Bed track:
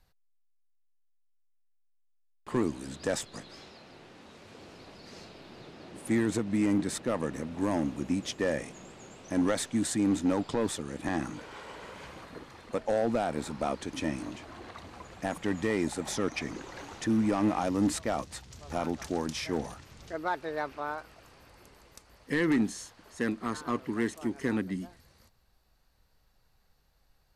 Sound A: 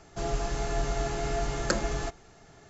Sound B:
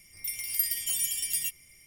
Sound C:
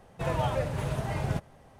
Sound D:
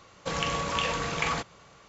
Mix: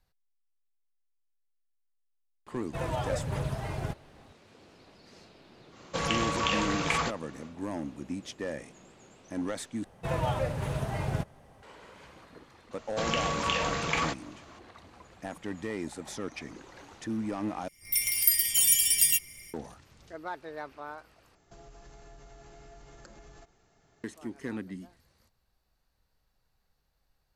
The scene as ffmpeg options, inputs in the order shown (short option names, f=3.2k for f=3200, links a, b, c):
-filter_complex "[3:a]asplit=2[a][b];[4:a]asplit=2[c][d];[0:a]volume=-6.5dB[e];[a]aphaser=in_gain=1:out_gain=1:delay=3:decay=0.31:speed=1.2:type=sinusoidal[f];[2:a]dynaudnorm=f=140:g=3:m=13.5dB[g];[1:a]acompressor=threshold=-36dB:ratio=6:attack=3.2:release=140:knee=1:detection=peak[h];[e]asplit=4[i][j][k][l];[i]atrim=end=9.844[m];[b]atrim=end=1.79,asetpts=PTS-STARTPTS,volume=-1dB[n];[j]atrim=start=11.626:end=17.684[o];[g]atrim=end=1.86,asetpts=PTS-STARTPTS,volume=-5.5dB[p];[k]atrim=start=19.536:end=21.354[q];[h]atrim=end=2.69,asetpts=PTS-STARTPTS,volume=-12dB[r];[l]atrim=start=24.036[s];[f]atrim=end=1.79,asetpts=PTS-STARTPTS,volume=-3.5dB,afade=t=in:d=0.004:c=hsin,afade=t=out:st=1.786:d=0.004:c=hsin,adelay=2540[t];[c]atrim=end=1.88,asetpts=PTS-STARTPTS,afade=t=in:d=0.1,afade=t=out:st=1.78:d=0.1,adelay=5680[u];[d]atrim=end=1.88,asetpts=PTS-STARTPTS,volume=-0.5dB,afade=t=in:d=0.004:c=hsin,afade=t=out:st=1.876:d=0.004:c=hsin,adelay=12710[v];[m][n]acrossfade=d=0.004:c1=hsin:c2=hsin[w];[w][o]acrossfade=d=0.004:c1=hsin:c2=hsin[x];[x][p]acrossfade=d=0.004:c1=hsin:c2=hsin[y];[y][q]acrossfade=d=0.004:c1=hsin:c2=hsin[z];[z][r]acrossfade=d=0.004:c1=hsin:c2=hsin[aa];[aa][s]acrossfade=d=0.004:c1=hsin:c2=hsin[ab];[ab][t][u][v]amix=inputs=4:normalize=0"